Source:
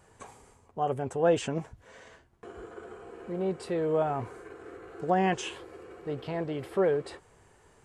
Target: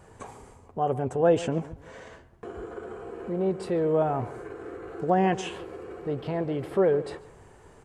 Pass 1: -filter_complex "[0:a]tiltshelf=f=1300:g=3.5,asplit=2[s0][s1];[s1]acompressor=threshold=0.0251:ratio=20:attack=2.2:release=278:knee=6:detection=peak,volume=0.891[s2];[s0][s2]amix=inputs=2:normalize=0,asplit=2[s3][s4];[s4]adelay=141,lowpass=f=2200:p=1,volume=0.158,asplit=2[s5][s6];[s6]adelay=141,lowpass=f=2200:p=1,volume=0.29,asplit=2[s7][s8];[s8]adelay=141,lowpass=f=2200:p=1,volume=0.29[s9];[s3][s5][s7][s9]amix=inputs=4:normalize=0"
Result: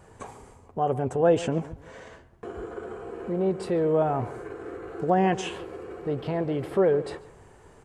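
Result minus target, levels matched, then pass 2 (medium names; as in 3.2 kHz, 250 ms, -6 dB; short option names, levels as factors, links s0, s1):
compression: peak gain reduction -7.5 dB
-filter_complex "[0:a]tiltshelf=f=1300:g=3.5,asplit=2[s0][s1];[s1]acompressor=threshold=0.01:ratio=20:attack=2.2:release=278:knee=6:detection=peak,volume=0.891[s2];[s0][s2]amix=inputs=2:normalize=0,asplit=2[s3][s4];[s4]adelay=141,lowpass=f=2200:p=1,volume=0.158,asplit=2[s5][s6];[s6]adelay=141,lowpass=f=2200:p=1,volume=0.29,asplit=2[s7][s8];[s8]adelay=141,lowpass=f=2200:p=1,volume=0.29[s9];[s3][s5][s7][s9]amix=inputs=4:normalize=0"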